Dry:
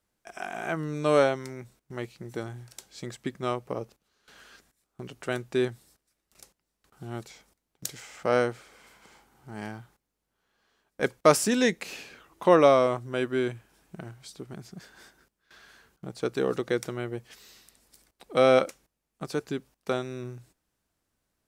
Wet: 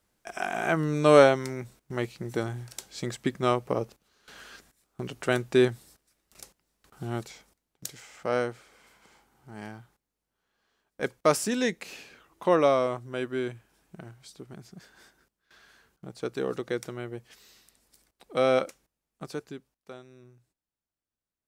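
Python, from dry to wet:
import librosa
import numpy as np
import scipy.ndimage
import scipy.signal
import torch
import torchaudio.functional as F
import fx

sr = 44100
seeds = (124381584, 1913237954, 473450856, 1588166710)

y = fx.gain(x, sr, db=fx.line((7.06, 5.0), (7.91, -3.5), (19.27, -3.5), (19.9, -16.0)))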